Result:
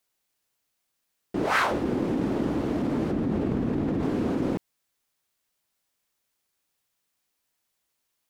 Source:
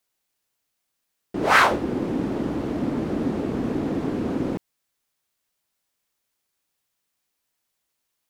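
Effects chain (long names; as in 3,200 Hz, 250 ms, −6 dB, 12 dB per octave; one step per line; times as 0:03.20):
0:03.11–0:04.03: bass and treble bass +6 dB, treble −5 dB
in parallel at +1 dB: compressor whose output falls as the input rises −25 dBFS, ratio −0.5
on the sum: level −8 dB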